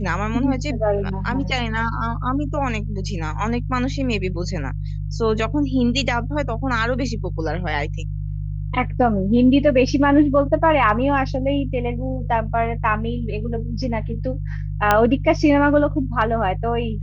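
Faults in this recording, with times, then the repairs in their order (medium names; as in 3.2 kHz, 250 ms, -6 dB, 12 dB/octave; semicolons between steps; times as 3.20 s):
hum 50 Hz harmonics 3 -26 dBFS
14.91 s: pop -2 dBFS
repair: de-click; de-hum 50 Hz, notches 3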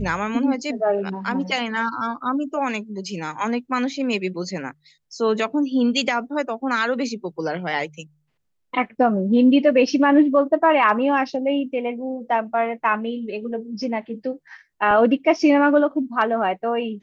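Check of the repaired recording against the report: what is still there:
nothing left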